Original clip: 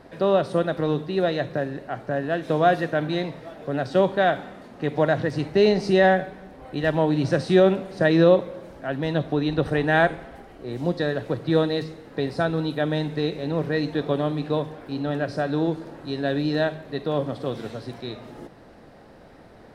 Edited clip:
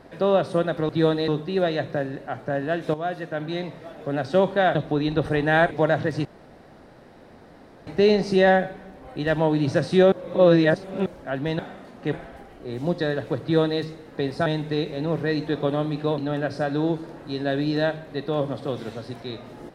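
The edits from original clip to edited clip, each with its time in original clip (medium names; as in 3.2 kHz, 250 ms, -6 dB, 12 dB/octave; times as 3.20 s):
2.55–3.57 s: fade in, from -12.5 dB
4.36–4.90 s: swap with 9.16–10.12 s
5.44 s: insert room tone 1.62 s
7.69–8.63 s: reverse
11.41–11.80 s: copy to 0.89 s
12.45–12.92 s: delete
14.64–14.96 s: delete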